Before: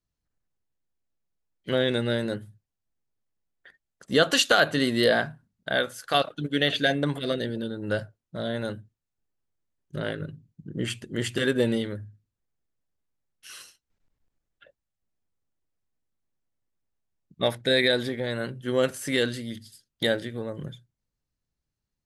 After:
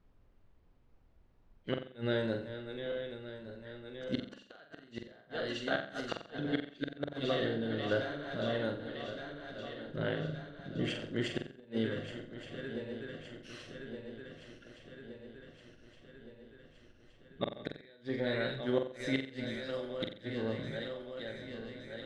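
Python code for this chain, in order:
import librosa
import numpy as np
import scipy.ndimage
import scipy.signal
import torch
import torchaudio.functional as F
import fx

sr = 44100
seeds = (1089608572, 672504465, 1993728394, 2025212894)

y = fx.reverse_delay_fb(x, sr, ms=584, feedback_pct=77, wet_db=-12)
y = fx.dmg_noise_colour(y, sr, seeds[0], colour='brown', level_db=-59.0)
y = fx.gate_flip(y, sr, shuts_db=-13.0, range_db=-32)
y = fx.air_absorb(y, sr, metres=140.0)
y = fx.hum_notches(y, sr, base_hz=50, count=4)
y = fx.room_flutter(y, sr, wall_m=7.7, rt60_s=0.43)
y = F.gain(torch.from_numpy(y), -5.0).numpy()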